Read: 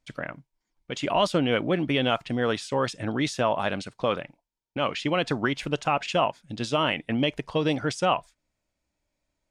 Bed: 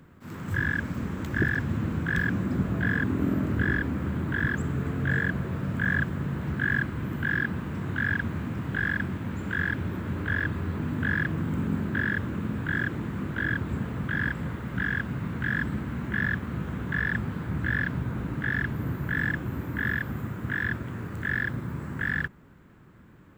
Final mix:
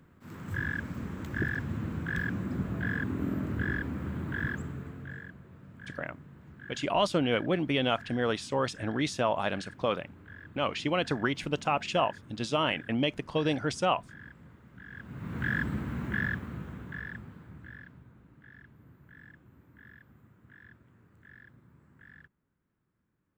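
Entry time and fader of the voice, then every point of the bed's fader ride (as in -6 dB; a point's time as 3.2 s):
5.80 s, -3.5 dB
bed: 4.49 s -6 dB
5.37 s -21 dB
14.84 s -21 dB
15.39 s -2.5 dB
16.11 s -2.5 dB
18.21 s -26 dB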